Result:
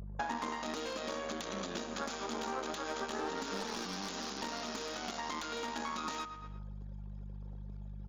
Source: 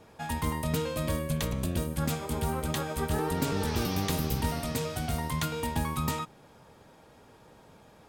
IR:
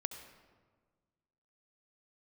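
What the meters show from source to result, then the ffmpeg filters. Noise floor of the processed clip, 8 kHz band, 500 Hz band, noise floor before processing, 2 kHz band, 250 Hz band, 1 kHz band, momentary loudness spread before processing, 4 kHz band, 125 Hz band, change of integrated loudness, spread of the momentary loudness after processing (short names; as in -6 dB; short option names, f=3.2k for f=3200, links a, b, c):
-45 dBFS, -6.5 dB, -6.5 dB, -56 dBFS, -3.0 dB, -10.0 dB, -3.5 dB, 3 LU, -3.0 dB, -18.0 dB, -8.5 dB, 10 LU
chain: -filter_complex "[0:a]acrossover=split=490|2300[a][b][c];[c]dynaudnorm=f=300:g=3:m=13dB[d];[a][b][d]amix=inputs=3:normalize=0,aeval=exprs='max(val(0),0)':c=same,alimiter=limit=-18dB:level=0:latency=1:release=186,anlmdn=0.01,afftfilt=real='re*between(b*sr/4096,180,7200)':imag='im*between(b*sr/4096,180,7200)':win_size=4096:overlap=0.75,aeval=exprs='val(0)+0.00112*(sin(2*PI*50*n/s)+sin(2*PI*2*50*n/s)/2+sin(2*PI*3*50*n/s)/3+sin(2*PI*4*50*n/s)/4+sin(2*PI*5*50*n/s)/5)':c=same,asplit=2[e][f];[f]adelay=114,lowpass=f=4.4k:p=1,volume=-17dB,asplit=2[g][h];[h]adelay=114,lowpass=f=4.4k:p=1,volume=0.36,asplit=2[i][j];[j]adelay=114,lowpass=f=4.4k:p=1,volume=0.36[k];[e][g][i][k]amix=inputs=4:normalize=0,aeval=exprs='clip(val(0),-1,0.0398)':c=same,bandreject=f=249.6:t=h:w=4,bandreject=f=499.2:t=h:w=4,bandreject=f=748.8:t=h:w=4,bandreject=f=998.4:t=h:w=4,bandreject=f=1.248k:t=h:w=4,bandreject=f=1.4976k:t=h:w=4,bandreject=f=1.7472k:t=h:w=4,bandreject=f=1.9968k:t=h:w=4,bandreject=f=2.2464k:t=h:w=4,acompressor=threshold=-51dB:ratio=8,highshelf=f=1.8k:t=q:w=1.5:g=-6,volume=16.5dB"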